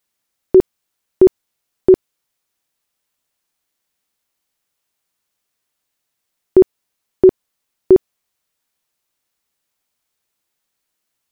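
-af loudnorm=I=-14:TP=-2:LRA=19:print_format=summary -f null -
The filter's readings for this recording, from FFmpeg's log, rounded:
Input Integrated:    -14.7 LUFS
Input True Peak:      -1.9 dBTP
Input LRA:             2.0 LU
Input Threshold:     -25.1 LUFS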